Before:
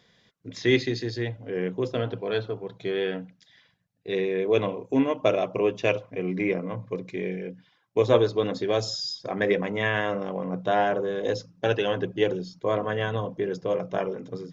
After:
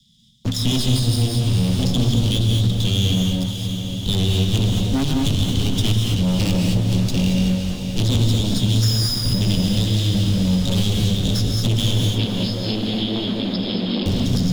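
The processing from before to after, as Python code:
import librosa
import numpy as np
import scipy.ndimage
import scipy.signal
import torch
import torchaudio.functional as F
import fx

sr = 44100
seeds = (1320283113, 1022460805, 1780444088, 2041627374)

y = fx.lower_of_two(x, sr, delay_ms=0.56)
y = scipy.signal.sosfilt(scipy.signal.cheby1(4, 1.0, [240.0, 3100.0], 'bandstop', fs=sr, output='sos'), y)
y = fx.rider(y, sr, range_db=10, speed_s=2.0)
y = fx.leveller(y, sr, passes=5)
y = fx.brickwall_bandpass(y, sr, low_hz=190.0, high_hz=5300.0, at=(12.02, 14.06))
y = fx.echo_diffused(y, sr, ms=482, feedback_pct=48, wet_db=-13.5)
y = fx.rev_gated(y, sr, seeds[0], gate_ms=250, shape='rising', drr_db=1.5)
y = fx.band_squash(y, sr, depth_pct=70)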